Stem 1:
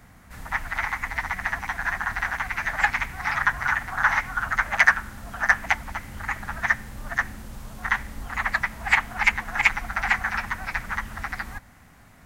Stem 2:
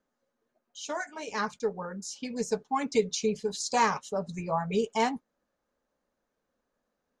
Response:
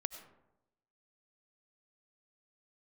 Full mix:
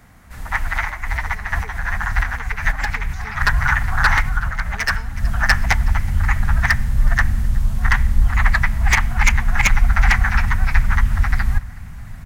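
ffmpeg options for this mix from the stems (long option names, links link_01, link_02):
-filter_complex "[0:a]aeval=exprs='0.282*(abs(mod(val(0)/0.282+3,4)-2)-1)':channel_layout=same,volume=1dB,asplit=3[link_01][link_02][link_03];[link_02]volume=-15dB[link_04];[link_03]volume=-23.5dB[link_05];[1:a]alimiter=limit=-21dB:level=0:latency=1,volume=-17dB,asplit=3[link_06][link_07][link_08];[link_06]atrim=end=3.33,asetpts=PTS-STARTPTS,afade=type=out:start_time=3.326:duration=0.004:curve=hsin[link_09];[link_07]atrim=start=3.33:end=4.22,asetpts=PTS-STARTPTS,volume=0[link_10];[link_08]atrim=start=4.22,asetpts=PTS-STARTPTS,afade=type=in:duration=0.004:curve=hsin[link_11];[link_09][link_10][link_11]concat=n=3:v=0:a=1,asplit=2[link_12][link_13];[link_13]apad=whole_len=540422[link_14];[link_01][link_14]sidechaincompress=threshold=-57dB:ratio=8:attack=9.6:release=119[link_15];[2:a]atrim=start_sample=2205[link_16];[link_04][link_16]afir=irnorm=-1:irlink=0[link_17];[link_05]aecho=0:1:371|742|1113|1484|1855|2226|2597|2968:1|0.55|0.303|0.166|0.0915|0.0503|0.0277|0.0152[link_18];[link_15][link_12][link_17][link_18]amix=inputs=4:normalize=0,asubboost=boost=9:cutoff=120,dynaudnorm=framelen=110:gausssize=9:maxgain=5dB"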